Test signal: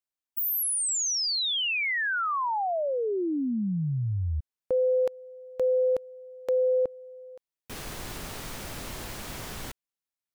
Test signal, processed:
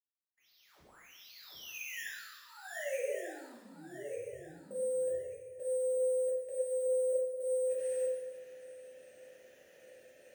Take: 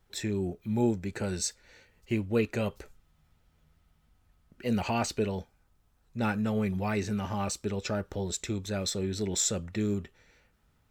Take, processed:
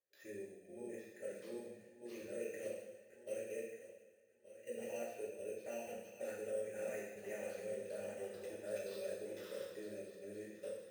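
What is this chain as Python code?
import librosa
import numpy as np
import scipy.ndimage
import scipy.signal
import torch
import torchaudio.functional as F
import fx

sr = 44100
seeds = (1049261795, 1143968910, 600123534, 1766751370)

y = fx.reverse_delay_fb(x, sr, ms=594, feedback_pct=49, wet_db=-0.5)
y = fx.level_steps(y, sr, step_db=15)
y = fx.vowel_filter(y, sr, vowel='e')
y = fx.sample_hold(y, sr, seeds[0], rate_hz=8800.0, jitter_pct=0)
y = fx.rev_double_slope(y, sr, seeds[1], early_s=0.96, late_s=2.5, knee_db=-17, drr_db=-6.5)
y = y * 10.0 ** (-8.0 / 20.0)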